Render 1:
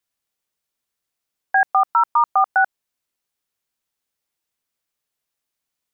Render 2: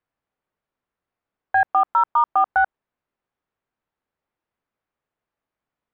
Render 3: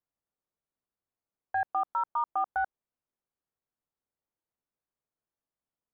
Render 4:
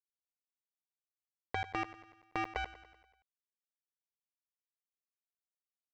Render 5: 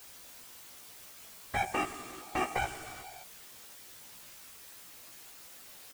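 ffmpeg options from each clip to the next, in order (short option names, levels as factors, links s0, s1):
-af "acontrast=38,lowpass=1500,alimiter=limit=0.316:level=0:latency=1:release=30"
-af "equalizer=f=2700:w=0.46:g=-6,volume=0.355"
-af "lowpass=f=440:t=q:w=4.9,aresample=16000,acrusher=bits=4:mix=0:aa=0.5,aresample=44100,aecho=1:1:96|192|288|384|480|576:0.168|0.0974|0.0565|0.0328|0.019|0.011,volume=1.88"
-filter_complex "[0:a]aeval=exprs='val(0)+0.5*0.00668*sgn(val(0))':c=same,afftfilt=real='hypot(re,im)*cos(2*PI*random(0))':imag='hypot(re,im)*sin(2*PI*random(1))':win_size=512:overlap=0.75,asplit=2[s0][s1];[s1]adelay=16,volume=0.631[s2];[s0][s2]amix=inputs=2:normalize=0,volume=2.66"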